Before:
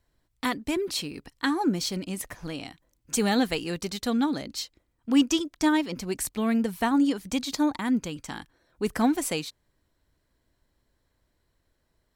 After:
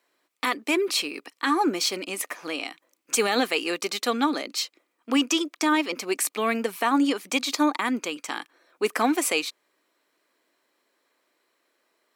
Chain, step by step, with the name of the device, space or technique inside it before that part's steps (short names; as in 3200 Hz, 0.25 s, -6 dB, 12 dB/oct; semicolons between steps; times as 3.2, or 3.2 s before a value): laptop speaker (HPF 310 Hz 24 dB/oct; bell 1200 Hz +7.5 dB 0.2 oct; bell 2400 Hz +7 dB 0.48 oct; limiter -16.5 dBFS, peak gain reduction 6.5 dB); gain +5 dB